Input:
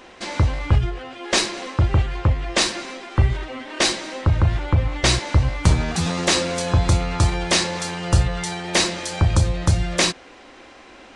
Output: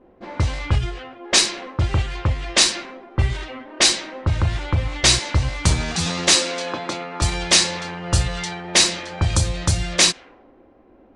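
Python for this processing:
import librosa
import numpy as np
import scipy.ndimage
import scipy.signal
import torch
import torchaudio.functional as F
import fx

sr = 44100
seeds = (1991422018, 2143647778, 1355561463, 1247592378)

y = fx.highpass(x, sr, hz=230.0, slope=24, at=(6.35, 7.22))
y = fx.env_lowpass(y, sr, base_hz=410.0, full_db=-16.0)
y = fx.high_shelf(y, sr, hz=2500.0, db=10.5)
y = y * librosa.db_to_amplitude(-2.5)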